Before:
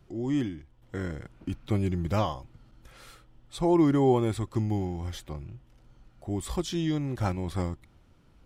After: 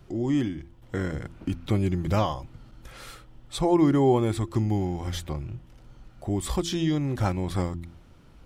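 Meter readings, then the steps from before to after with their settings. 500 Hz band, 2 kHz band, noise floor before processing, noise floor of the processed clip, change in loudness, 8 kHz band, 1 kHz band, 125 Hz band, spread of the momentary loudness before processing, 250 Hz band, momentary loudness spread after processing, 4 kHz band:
+2.5 dB, +3.5 dB, −60 dBFS, −52 dBFS, +2.5 dB, +5.0 dB, +2.5 dB, +3.0 dB, 18 LU, +2.5 dB, 18 LU, +4.5 dB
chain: hum removal 84.92 Hz, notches 4
in parallel at +2 dB: downward compressor, threshold −34 dBFS, peak gain reduction 15.5 dB

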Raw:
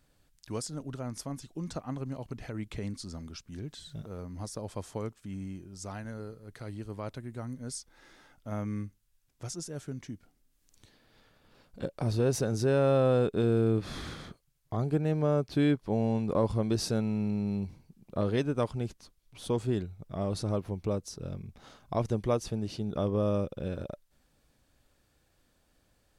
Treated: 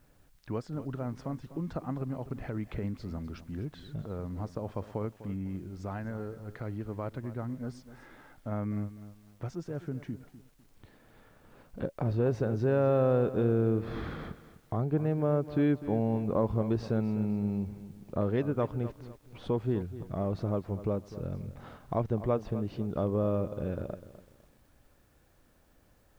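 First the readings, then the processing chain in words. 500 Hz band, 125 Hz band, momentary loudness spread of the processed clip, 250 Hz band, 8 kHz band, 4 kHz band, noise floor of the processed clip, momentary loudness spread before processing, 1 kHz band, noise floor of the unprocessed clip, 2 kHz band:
−0.5 dB, 0.0 dB, 13 LU, 0.0 dB, below −15 dB, below −10 dB, −64 dBFS, 15 LU, 0.0 dB, −71 dBFS, −2.0 dB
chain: low-pass filter 1,900 Hz 12 dB per octave
in parallel at +3 dB: downward compressor 20 to 1, threshold −41 dBFS, peak gain reduction 21 dB
on the sum: bit-depth reduction 12 bits, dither triangular
feedback echo at a low word length 251 ms, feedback 35%, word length 9 bits, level −14 dB
level −2 dB

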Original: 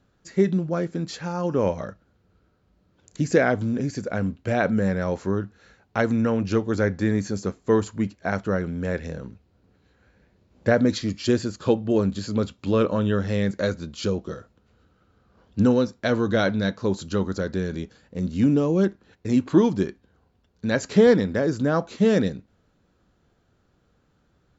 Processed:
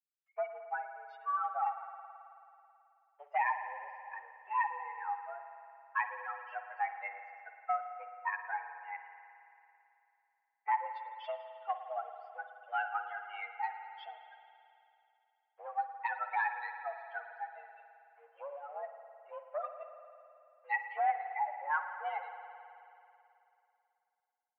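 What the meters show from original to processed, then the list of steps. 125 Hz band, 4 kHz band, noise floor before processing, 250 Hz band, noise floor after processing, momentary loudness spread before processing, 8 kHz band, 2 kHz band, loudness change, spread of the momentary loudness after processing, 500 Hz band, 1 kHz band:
below −40 dB, −23.5 dB, −66 dBFS, below −40 dB, −82 dBFS, 10 LU, can't be measured, −7.5 dB, −14.5 dB, 17 LU, −23.0 dB, −0.5 dB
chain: spectral dynamics exaggerated over time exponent 3
downward compressor 3 to 1, threshold −39 dBFS, peak gain reduction 18 dB
leveller curve on the samples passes 1
spring reverb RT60 2.8 s, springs 54 ms, chirp 60 ms, DRR 7 dB
single-sideband voice off tune +280 Hz 420–2,200 Hz
level +5 dB

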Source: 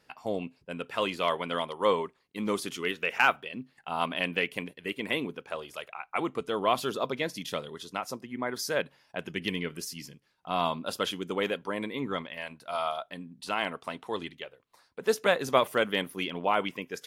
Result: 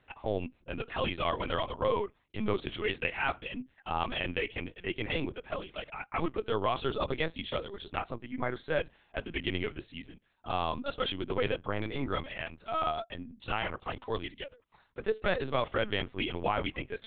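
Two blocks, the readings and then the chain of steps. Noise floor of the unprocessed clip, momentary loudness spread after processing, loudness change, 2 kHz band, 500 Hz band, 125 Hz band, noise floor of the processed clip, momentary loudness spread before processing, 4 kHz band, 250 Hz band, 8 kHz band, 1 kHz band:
−69 dBFS, 10 LU, −3.0 dB, −4.0 dB, −2.5 dB, +3.5 dB, −69 dBFS, 13 LU, −3.0 dB, −2.0 dB, below −35 dB, −3.5 dB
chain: brickwall limiter −18 dBFS, peak gain reduction 9.5 dB
linear-prediction vocoder at 8 kHz pitch kept

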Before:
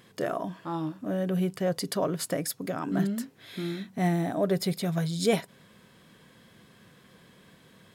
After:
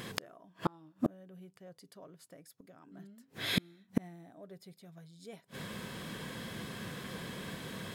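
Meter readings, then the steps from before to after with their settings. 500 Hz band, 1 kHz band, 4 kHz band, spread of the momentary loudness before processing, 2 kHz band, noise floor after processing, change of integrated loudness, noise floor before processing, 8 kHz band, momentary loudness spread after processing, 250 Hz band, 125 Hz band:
−16.0 dB, −10.5 dB, −3.0 dB, 7 LU, −3.5 dB, −71 dBFS, −10.0 dB, −58 dBFS, −12.0 dB, 18 LU, −11.0 dB, −12.5 dB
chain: gate with flip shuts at −29 dBFS, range −38 dB
level +13 dB

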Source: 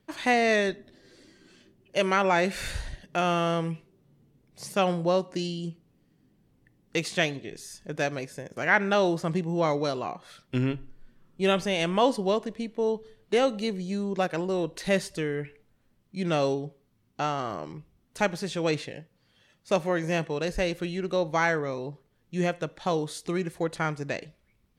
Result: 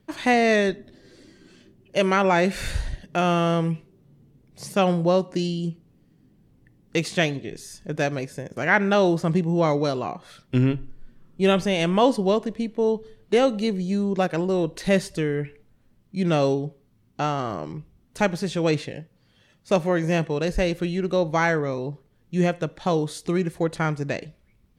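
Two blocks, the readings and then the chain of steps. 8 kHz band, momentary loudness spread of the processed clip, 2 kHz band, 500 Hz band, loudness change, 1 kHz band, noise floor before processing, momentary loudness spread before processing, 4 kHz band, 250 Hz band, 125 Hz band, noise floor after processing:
+2.0 dB, 13 LU, +2.5 dB, +4.0 dB, +4.5 dB, +3.0 dB, −68 dBFS, 14 LU, +2.0 dB, +6.5 dB, +7.0 dB, −61 dBFS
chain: low-shelf EQ 380 Hz +6 dB
level +2 dB

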